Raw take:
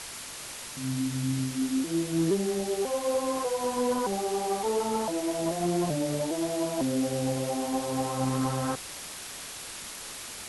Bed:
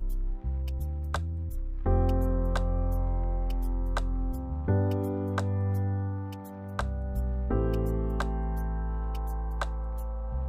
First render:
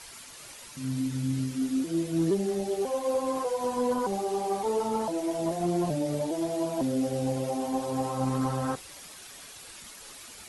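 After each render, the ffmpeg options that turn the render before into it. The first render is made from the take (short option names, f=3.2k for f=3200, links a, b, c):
-af "afftdn=nr=9:nf=-41"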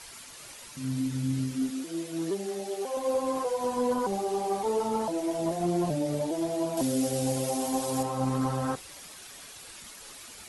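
-filter_complex "[0:a]asettb=1/sr,asplit=3[a][b][c];[a]atrim=end=1.704[d];[b]atrim=start=1.7:end=2.97,asetpts=PTS-STARTPTS,afade=t=in:d=0.004:c=qsin,afade=t=out:st=1.266:d=0.004:c=qsin,highpass=f=520:p=1[e];[c]atrim=start=2.966[f];[d][e]acrossfade=d=0.004:c1=hsin:c2=qsin[g];[g][f]acrossfade=d=0.004:c1=qsin:c2=hsin,asettb=1/sr,asplit=3[h][i][j];[h]atrim=end=6.774[k];[i]atrim=start=6.77:end=8.03,asetpts=PTS-STARTPTS,afade=t=in:d=0.004:c=qsin,afade=t=out:st=1.256:d=0.004:c=qsin,highshelf=f=3.8k:g=11.5[l];[j]atrim=start=8.026[m];[k][l]acrossfade=d=0.004:c1=hsin:c2=qsin[n];[n][m]acrossfade=d=0.004:c1=qsin:c2=hsin"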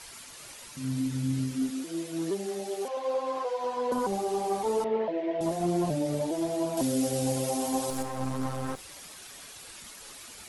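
-filter_complex "[0:a]asettb=1/sr,asplit=3[a][b][c];[a]atrim=end=2.884[d];[b]atrim=start=2.88:end=3.92,asetpts=PTS-STARTPTS,afade=t=in:d=0.004:c=qsin,afade=t=out:st=1.036:d=0.004:c=qsin,acrossover=split=380 5300:gain=0.158 1 0.141[e][f][g];[e][f][g]amix=inputs=3:normalize=0[h];[c]atrim=start=3.916[i];[d][h]acrossfade=d=0.004:c1=hsin:c2=qsin[j];[j][i]acrossfade=d=0.004:c1=qsin:c2=hsin,asettb=1/sr,asplit=3[k][l][m];[k]atrim=end=4.844[n];[l]atrim=start=4.84:end=5.41,asetpts=PTS-STARTPTS,afade=t=in:d=0.004:c=qsin,afade=t=out:st=0.566:d=0.004:c=qsin,highpass=210,equalizer=f=280:t=q:w=4:g=-8,equalizer=f=410:t=q:w=4:g=7,equalizer=f=590:t=q:w=4:g=5,equalizer=f=850:t=q:w=4:g=-7,equalizer=f=1.3k:t=q:w=4:g=-8,equalizer=f=1.9k:t=q:w=4:g=7,lowpass=f=3.1k:w=0.5412,lowpass=f=3.1k:w=1.3066[o];[m]atrim=start=5.406[p];[n][o]acrossfade=d=0.004:c1=hsin:c2=qsin[q];[q][p]acrossfade=d=0.004:c1=qsin:c2=hsin,asettb=1/sr,asplit=3[r][s][t];[r]atrim=end=7.904[u];[s]atrim=start=7.9:end=8.79,asetpts=PTS-STARTPTS,afade=t=in:d=0.004:c=qsin,afade=t=out:st=0.886:d=0.004:c=qsin,aeval=exprs='if(lt(val(0),0),0.251*val(0),val(0))':c=same[v];[t]atrim=start=8.786[w];[u][v]acrossfade=d=0.004:c1=hsin:c2=qsin[x];[x][w]acrossfade=d=0.004:c1=qsin:c2=hsin"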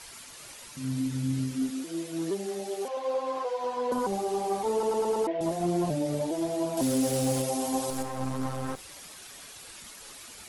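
-filter_complex "[0:a]asettb=1/sr,asplit=3[a][b][c];[a]atrim=end=6.824[d];[b]atrim=start=6.82:end=7.42,asetpts=PTS-STARTPTS,afade=t=in:d=0.004:c=qsin,afade=t=out:st=0.596:d=0.004:c=qsin,aeval=exprs='val(0)+0.5*0.0188*sgn(val(0))':c=same[e];[c]atrim=start=7.416[f];[d][e]acrossfade=d=0.004:c1=hsin:c2=qsin[g];[g][f]acrossfade=d=0.004:c1=qsin:c2=hsin,asplit=6[h][i][j][k][l][m];[h]atrim=end=4.832[n];[i]atrim=start=4.718:end=4.832[o];[j]atrim=start=4.718:end=4.832[p];[k]atrim=start=4.718:end=4.832[q];[l]atrim=start=4.718:end=4.832[r];[m]atrim=start=5.268[s];[n][o]acrossfade=d=0.004:c1=hsin:c2=hsin[t];[t][p]acrossfade=d=0.004:c1=hsin:c2=hsin[u];[u][q]acrossfade=d=0.004:c1=hsin:c2=hsin[v];[v][r]acrossfade=d=0.004:c1=hsin:c2=hsin[w];[w][s]acrossfade=d=0.004:c1=hsin:c2=hsin"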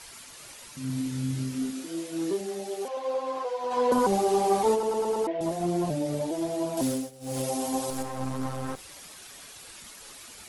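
-filter_complex "[0:a]asettb=1/sr,asplit=3[a][b][c];[a]atrim=end=0.874[d];[b]atrim=start=0.87:end=2.41,asetpts=PTS-STARTPTS,afade=t=in:d=0.004:c=qsin,afade=t=out:st=1.536:d=0.004:c=qsin,asplit=2[e][f];[f]adelay=28,volume=-5dB[g];[e][g]amix=inputs=2:normalize=0,atrim=end_sample=67914[h];[c]atrim=start=2.406[i];[d][h]acrossfade=d=0.004:c1=hsin:c2=qsin[j];[j][i]acrossfade=d=0.004:c1=qsin:c2=hsin,asplit=3[k][l][m];[k]afade=t=out:st=3.7:d=0.02[n];[l]acontrast=50,afade=t=in:st=3.7:d=0.02,afade=t=out:st=4.74:d=0.02[o];[m]afade=t=in:st=4.74:d=0.02[p];[n][o][p]amix=inputs=3:normalize=0,asplit=3[q][r][s];[q]atrim=end=7.11,asetpts=PTS-STARTPTS,afade=t=out:st=6.87:d=0.24:silence=0.0794328[t];[r]atrim=start=7.11:end=7.2,asetpts=PTS-STARTPTS,volume=-22dB[u];[s]atrim=start=7.2,asetpts=PTS-STARTPTS,afade=t=in:d=0.24:silence=0.0794328[v];[t][u][v]concat=n=3:v=0:a=1"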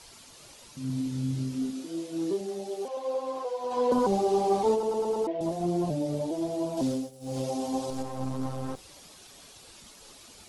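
-filter_complex "[0:a]acrossover=split=6300[a][b];[b]acompressor=threshold=-56dB:ratio=4:attack=1:release=60[c];[a][c]amix=inputs=2:normalize=0,equalizer=f=1.8k:w=0.9:g=-8.5"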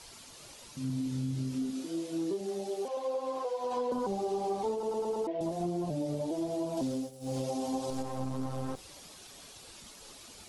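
-af "acompressor=threshold=-30dB:ratio=6"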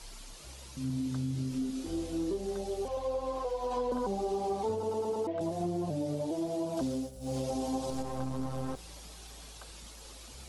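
-filter_complex "[1:a]volume=-20.5dB[a];[0:a][a]amix=inputs=2:normalize=0"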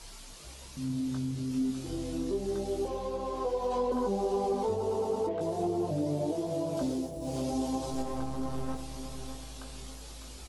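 -filter_complex "[0:a]asplit=2[a][b];[b]adelay=20,volume=-6dB[c];[a][c]amix=inputs=2:normalize=0,asplit=2[d][e];[e]adelay=602,lowpass=f=1.6k:p=1,volume=-8dB,asplit=2[f][g];[g]adelay=602,lowpass=f=1.6k:p=1,volume=0.45,asplit=2[h][i];[i]adelay=602,lowpass=f=1.6k:p=1,volume=0.45,asplit=2[j][k];[k]adelay=602,lowpass=f=1.6k:p=1,volume=0.45,asplit=2[l][m];[m]adelay=602,lowpass=f=1.6k:p=1,volume=0.45[n];[d][f][h][j][l][n]amix=inputs=6:normalize=0"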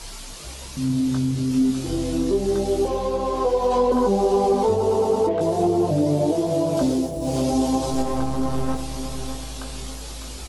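-af "volume=11dB"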